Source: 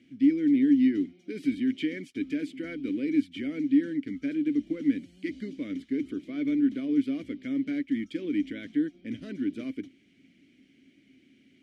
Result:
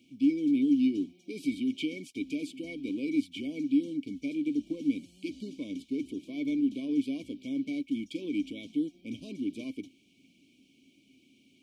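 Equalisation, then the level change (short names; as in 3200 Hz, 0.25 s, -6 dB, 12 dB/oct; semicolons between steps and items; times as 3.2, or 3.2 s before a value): brick-wall FIR band-stop 1100–2200 Hz; high shelf 3400 Hz +11.5 dB; -3.5 dB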